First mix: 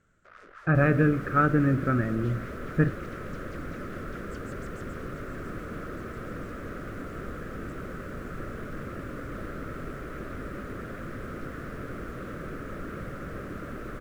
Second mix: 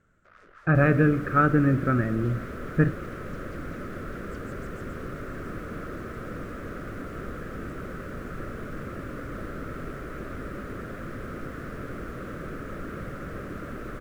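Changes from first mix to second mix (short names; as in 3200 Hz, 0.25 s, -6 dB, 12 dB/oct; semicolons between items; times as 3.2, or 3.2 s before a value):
first sound -5.5 dB; reverb: on, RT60 0.50 s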